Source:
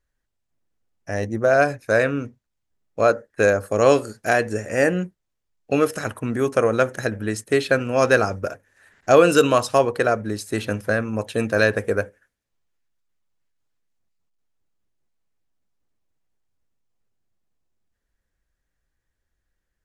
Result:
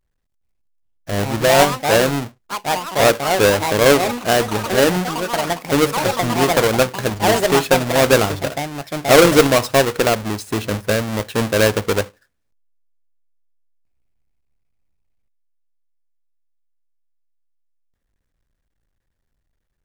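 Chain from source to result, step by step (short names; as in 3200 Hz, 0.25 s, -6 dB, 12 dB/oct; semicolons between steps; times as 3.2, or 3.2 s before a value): half-waves squared off; echoes that change speed 0.414 s, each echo +5 st, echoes 3, each echo -6 dB; gain -1 dB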